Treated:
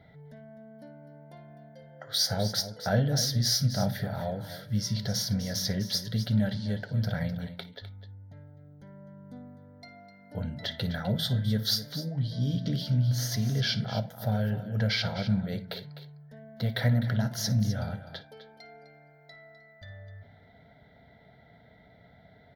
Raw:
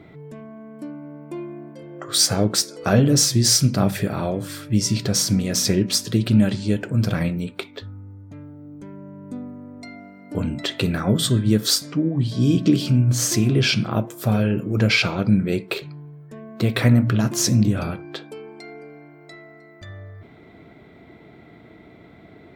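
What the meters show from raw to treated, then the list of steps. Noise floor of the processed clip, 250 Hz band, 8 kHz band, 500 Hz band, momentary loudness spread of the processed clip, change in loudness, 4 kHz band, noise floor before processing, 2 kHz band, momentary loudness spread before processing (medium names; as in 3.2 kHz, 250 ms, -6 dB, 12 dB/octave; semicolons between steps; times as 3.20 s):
-57 dBFS, -12.0 dB, -13.5 dB, -10.5 dB, 21 LU, -9.0 dB, -7.5 dB, -47 dBFS, -10.0 dB, 22 LU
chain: static phaser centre 1.7 kHz, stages 8; on a send: multi-tap echo 56/254 ms -18.5/-12.5 dB; on the sum: trim -6 dB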